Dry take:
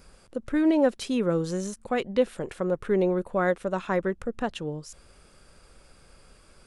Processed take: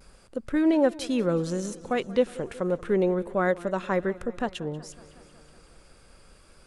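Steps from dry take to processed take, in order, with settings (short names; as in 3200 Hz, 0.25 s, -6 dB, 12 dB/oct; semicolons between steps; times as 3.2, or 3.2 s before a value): vibrato 0.32 Hz 17 cents; warbling echo 0.185 s, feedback 70%, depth 90 cents, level -20 dB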